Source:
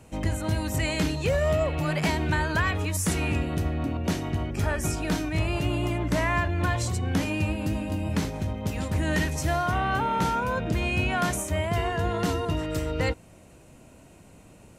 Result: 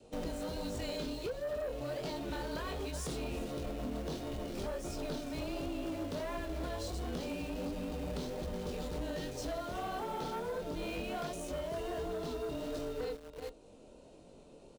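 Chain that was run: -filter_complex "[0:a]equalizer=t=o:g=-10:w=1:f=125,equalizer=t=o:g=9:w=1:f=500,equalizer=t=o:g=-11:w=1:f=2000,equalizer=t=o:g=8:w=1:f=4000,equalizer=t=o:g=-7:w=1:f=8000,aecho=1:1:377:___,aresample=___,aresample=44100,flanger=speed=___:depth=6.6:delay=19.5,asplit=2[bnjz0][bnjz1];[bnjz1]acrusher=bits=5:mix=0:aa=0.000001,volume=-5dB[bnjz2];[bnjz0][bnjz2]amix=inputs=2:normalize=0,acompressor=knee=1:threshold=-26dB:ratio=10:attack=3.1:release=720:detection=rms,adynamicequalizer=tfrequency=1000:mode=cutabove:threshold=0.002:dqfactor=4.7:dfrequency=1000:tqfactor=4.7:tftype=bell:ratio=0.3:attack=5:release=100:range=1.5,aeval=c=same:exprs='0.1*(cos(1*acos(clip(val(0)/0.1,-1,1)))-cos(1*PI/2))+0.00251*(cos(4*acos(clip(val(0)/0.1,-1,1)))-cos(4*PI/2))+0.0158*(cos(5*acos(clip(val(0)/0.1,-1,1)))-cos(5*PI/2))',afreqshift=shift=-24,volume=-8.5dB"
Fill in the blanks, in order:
0.211, 22050, 1.4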